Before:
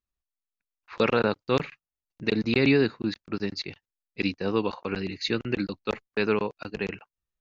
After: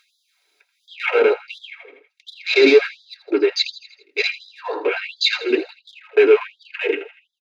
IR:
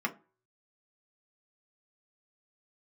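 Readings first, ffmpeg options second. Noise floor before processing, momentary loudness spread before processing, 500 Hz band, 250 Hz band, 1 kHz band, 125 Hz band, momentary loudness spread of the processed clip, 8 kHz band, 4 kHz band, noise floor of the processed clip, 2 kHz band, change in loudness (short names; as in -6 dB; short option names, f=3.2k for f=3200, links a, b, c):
under -85 dBFS, 11 LU, +10.5 dB, +0.5 dB, +2.5 dB, under -30 dB, 17 LU, n/a, +11.0 dB, -70 dBFS, +9.0 dB, +8.5 dB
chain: -filter_complex "[0:a]asplit=2[a][b];[b]highpass=f=720:p=1,volume=25dB,asoftclip=type=tanh:threshold=-8.5dB[c];[a][c]amix=inputs=2:normalize=0,lowpass=f=3.2k:p=1,volume=-6dB,bass=f=250:g=13,treble=f=4k:g=4,bandreject=f=1.2k:w=7.7,acompressor=mode=upward:threshold=-17dB:ratio=2.5,afwtdn=0.0562,aecho=1:1:81|162|243|324|405:0.178|0.096|0.0519|0.028|0.0151[d];[1:a]atrim=start_sample=2205,asetrate=83790,aresample=44100[e];[d][e]afir=irnorm=-1:irlink=0,afftfilt=real='re*gte(b*sr/1024,250*pow(3300/250,0.5+0.5*sin(2*PI*1.4*pts/sr)))':imag='im*gte(b*sr/1024,250*pow(3300/250,0.5+0.5*sin(2*PI*1.4*pts/sr)))':win_size=1024:overlap=0.75,volume=-1dB"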